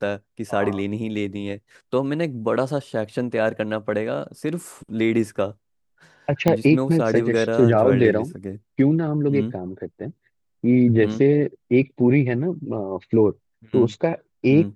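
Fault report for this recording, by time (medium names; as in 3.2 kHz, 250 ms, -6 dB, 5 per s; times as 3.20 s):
6.48 s: pop -6 dBFS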